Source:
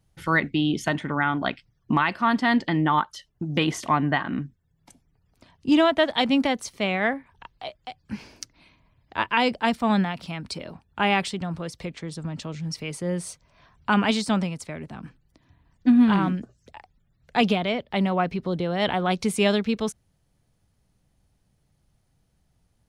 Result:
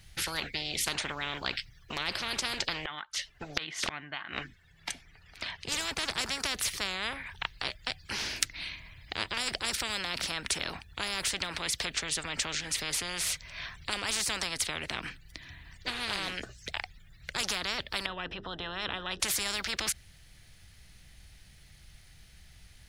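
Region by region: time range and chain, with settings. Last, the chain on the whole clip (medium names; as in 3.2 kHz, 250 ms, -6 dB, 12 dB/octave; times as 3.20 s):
2.85–5.68 s: inverted gate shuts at -18 dBFS, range -28 dB + overdrive pedal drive 12 dB, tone 2.2 kHz, clips at -15 dBFS
18.06–19.20 s: boxcar filter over 20 samples + hum notches 50/100/150/200/250/300/350/400/450 Hz
whole clip: ten-band graphic EQ 125 Hz -6 dB, 250 Hz -10 dB, 500 Hz -8 dB, 1 kHz -8 dB, 2 kHz +8 dB, 4 kHz +5 dB; spectrum-flattening compressor 10:1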